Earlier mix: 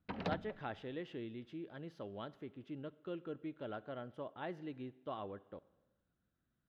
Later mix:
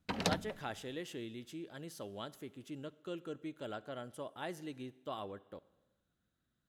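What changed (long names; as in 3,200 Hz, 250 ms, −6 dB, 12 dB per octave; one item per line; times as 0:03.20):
background +4.0 dB
master: remove high-frequency loss of the air 330 metres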